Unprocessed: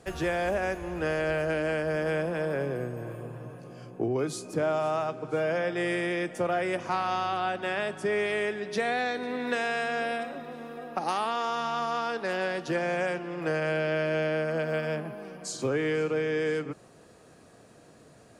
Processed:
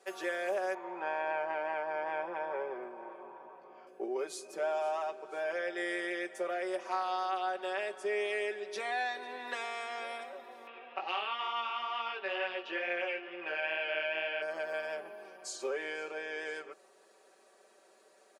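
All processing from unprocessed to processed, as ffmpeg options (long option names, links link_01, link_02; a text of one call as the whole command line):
ffmpeg -i in.wav -filter_complex "[0:a]asettb=1/sr,asplit=3[link_01][link_02][link_03];[link_01]atrim=end=0.744[link_04];[link_02]atrim=start=0.74:end=3.87,asetpts=PTS-STARTPTS,afade=type=in:duration=0.004:curve=qsin,afade=type=out:start_time=3.126:duration=0.004:curve=qsin,lowpass=2400,equalizer=frequency=890:width=3.3:gain=13,aecho=1:1:0.9:0.33,atrim=end_sample=138033[link_05];[link_03]atrim=start=3.866[link_06];[link_04][link_05]acrossfade=duration=0.004:curve1=hsin:curve2=qsin[link_07];[link_07][link_06]acrossfade=duration=0.004:curve1=qsin:curve2=hsin,asettb=1/sr,asplit=3[link_08][link_09][link_10];[link_08]atrim=end=10.674[link_11];[link_09]atrim=start=10.67:end=14.42,asetpts=PTS-STARTPTS,afade=type=in:duration=0.004:curve=qsin,afade=type=out:start_time=3.746:duration=0.004:curve=qsin,flanger=delay=17:depth=3.7:speed=2.2,acompressor=mode=upward:threshold=-36dB:ratio=2.5:attack=3.2:release=140:knee=2.83:detection=peak,lowpass=frequency=2800:width_type=q:width=5.1[link_12];[link_10]atrim=start=14.416[link_13];[link_11][link_12]acrossfade=duration=0.004:curve1=hsin:curve2=qsin[link_14];[link_14][link_13]acrossfade=duration=0.004:curve1=qsin:curve2=hsin,highpass=frequency=380:width=0.5412,highpass=frequency=380:width=1.3066,aecho=1:1:5.2:0.88,volume=-8dB" out.wav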